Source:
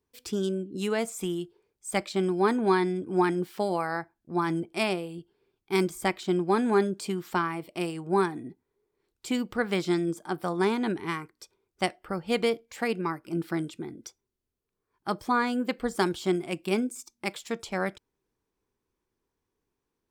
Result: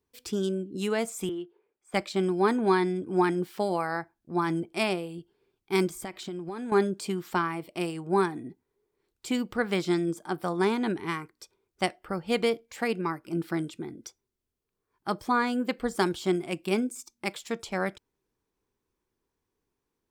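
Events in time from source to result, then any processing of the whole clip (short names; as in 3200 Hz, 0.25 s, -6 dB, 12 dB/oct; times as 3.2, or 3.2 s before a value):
1.29–1.94 three-band isolator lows -19 dB, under 250 Hz, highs -23 dB, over 3000 Hz
5.92–6.72 compressor 10:1, threshold -32 dBFS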